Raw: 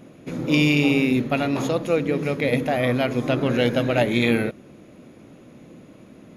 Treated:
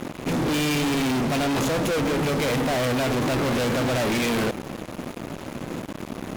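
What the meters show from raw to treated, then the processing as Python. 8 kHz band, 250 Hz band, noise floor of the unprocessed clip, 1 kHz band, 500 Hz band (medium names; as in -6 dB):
+9.5 dB, -2.5 dB, -48 dBFS, +2.5 dB, -2.5 dB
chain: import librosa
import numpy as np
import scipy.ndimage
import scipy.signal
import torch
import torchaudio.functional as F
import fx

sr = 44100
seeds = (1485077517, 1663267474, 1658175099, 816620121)

p1 = fx.quant_companded(x, sr, bits=4)
p2 = x + F.gain(torch.from_numpy(p1), -11.5).numpy()
p3 = fx.fuzz(p2, sr, gain_db=38.0, gate_db=-45.0)
y = F.gain(torch.from_numpy(p3), -9.0).numpy()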